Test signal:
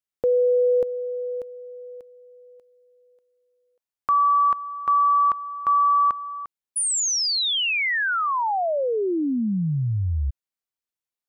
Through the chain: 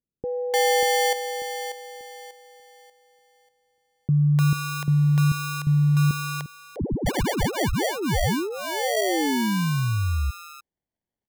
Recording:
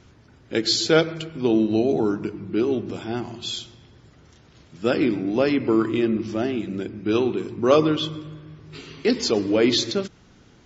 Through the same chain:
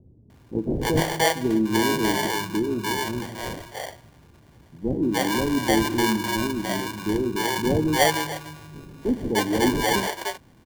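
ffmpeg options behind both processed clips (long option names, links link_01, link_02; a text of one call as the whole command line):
ffmpeg -i in.wav -filter_complex "[0:a]acrusher=samples=34:mix=1:aa=0.000001,acrossover=split=470[link_01][link_02];[link_02]adelay=300[link_03];[link_01][link_03]amix=inputs=2:normalize=0" out.wav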